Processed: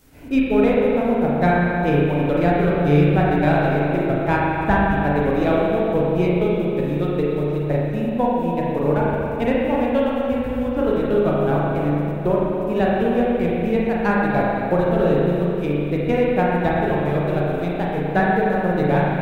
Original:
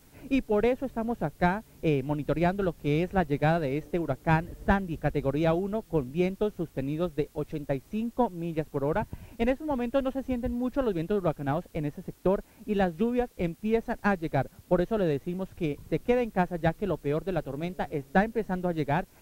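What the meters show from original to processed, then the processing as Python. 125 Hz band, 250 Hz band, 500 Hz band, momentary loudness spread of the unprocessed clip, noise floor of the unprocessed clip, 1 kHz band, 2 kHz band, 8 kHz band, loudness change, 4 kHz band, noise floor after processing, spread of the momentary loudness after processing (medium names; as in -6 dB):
+10.0 dB, +9.5 dB, +9.5 dB, 6 LU, -57 dBFS, +9.5 dB, +9.5 dB, no reading, +9.5 dB, +7.5 dB, -24 dBFS, 5 LU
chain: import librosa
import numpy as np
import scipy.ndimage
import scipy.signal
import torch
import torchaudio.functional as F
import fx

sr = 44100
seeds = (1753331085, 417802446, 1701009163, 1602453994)

y = fx.transient(x, sr, attack_db=1, sustain_db=-8)
y = fx.rev_spring(y, sr, rt60_s=2.8, pass_ms=(34, 41), chirp_ms=25, drr_db=-5.5)
y = y * librosa.db_to_amplitude(2.5)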